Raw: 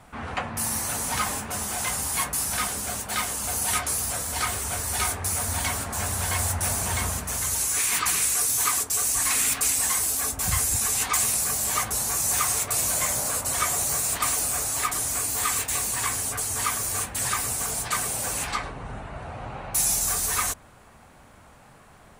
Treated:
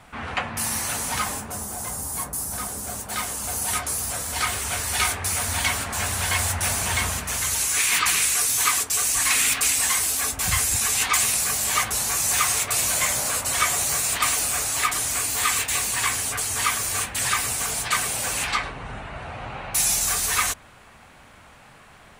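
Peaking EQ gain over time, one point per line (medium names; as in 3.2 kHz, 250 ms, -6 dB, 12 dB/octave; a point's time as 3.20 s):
peaking EQ 2.7 kHz 2 oct
0.88 s +6 dB
1.35 s -1 dB
1.70 s -12.5 dB
2.52 s -12.5 dB
3.25 s -1 dB
3.94 s -1 dB
4.72 s +8 dB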